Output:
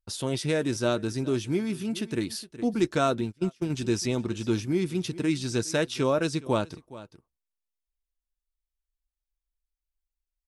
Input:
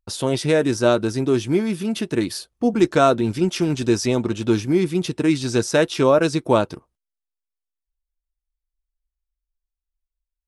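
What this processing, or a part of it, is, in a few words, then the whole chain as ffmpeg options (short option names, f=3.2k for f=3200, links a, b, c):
ducked delay: -filter_complex "[0:a]asplit=3[a][b][c];[b]adelay=415,volume=-5.5dB[d];[c]apad=whole_len=480130[e];[d][e]sidechaincompress=threshold=-29dB:ratio=16:attack=5.6:release=675[f];[a][f]amix=inputs=2:normalize=0,asplit=3[g][h][i];[g]afade=t=out:st=3.23:d=0.02[j];[h]agate=range=-29dB:threshold=-19dB:ratio=16:detection=peak,afade=t=in:st=3.23:d=0.02,afade=t=out:st=3.69:d=0.02[k];[i]afade=t=in:st=3.69:d=0.02[l];[j][k][l]amix=inputs=3:normalize=0,equalizer=f=680:t=o:w=2.6:g=-5,volume=-5dB"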